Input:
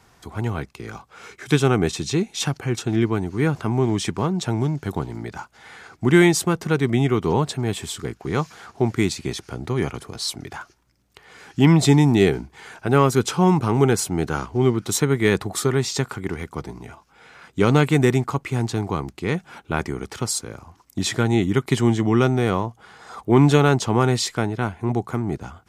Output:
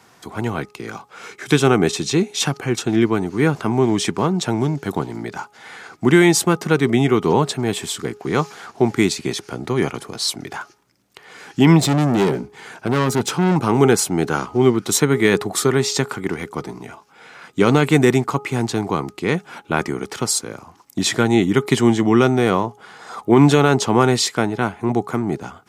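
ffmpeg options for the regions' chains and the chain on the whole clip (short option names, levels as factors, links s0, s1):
-filter_complex "[0:a]asettb=1/sr,asplit=3[s0][s1][s2];[s0]atrim=end=11.804[s3];[s1]atrim=start=11.8:end=13.56,asetpts=PTS-STARTPTS,afade=t=in:d=0.004:c=qsin,afade=t=out:st=1.756:d=0.004:c=qsin,equalizer=f=140:w=0.44:g=5,aeval=exprs='(tanh(7.08*val(0)+0.5)-tanh(0.5))/7.08':c=same[s4];[s2]atrim=start=13.556[s5];[s3][s4]acrossfade=d=0.004:c1=hsin:c2=qsin[s6];[s6][s5]acrossfade=d=0.004:c1=qsin:c2=hsin,highpass=160,bandreject=f=416:t=h:w=4,bandreject=f=832:t=h:w=4,bandreject=f=1248:t=h:w=4,alimiter=level_in=2:limit=0.891:release=50:level=0:latency=1,volume=0.891"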